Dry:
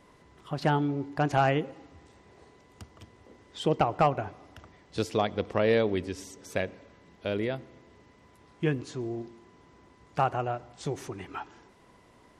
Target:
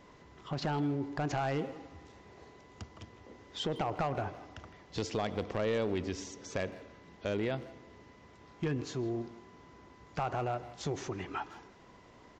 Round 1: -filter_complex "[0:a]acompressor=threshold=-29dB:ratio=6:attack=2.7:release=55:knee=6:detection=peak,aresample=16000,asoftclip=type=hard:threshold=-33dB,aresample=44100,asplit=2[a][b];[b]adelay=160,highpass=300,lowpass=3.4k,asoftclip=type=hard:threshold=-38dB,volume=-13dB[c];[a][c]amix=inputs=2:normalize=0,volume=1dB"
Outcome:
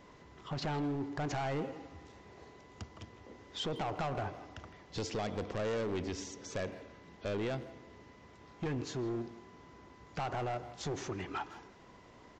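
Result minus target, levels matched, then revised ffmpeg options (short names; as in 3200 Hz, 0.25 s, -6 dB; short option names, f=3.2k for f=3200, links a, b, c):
hard clip: distortion +9 dB
-filter_complex "[0:a]acompressor=threshold=-29dB:ratio=6:attack=2.7:release=55:knee=6:detection=peak,aresample=16000,asoftclip=type=hard:threshold=-26.5dB,aresample=44100,asplit=2[a][b];[b]adelay=160,highpass=300,lowpass=3.4k,asoftclip=type=hard:threshold=-38dB,volume=-13dB[c];[a][c]amix=inputs=2:normalize=0,volume=1dB"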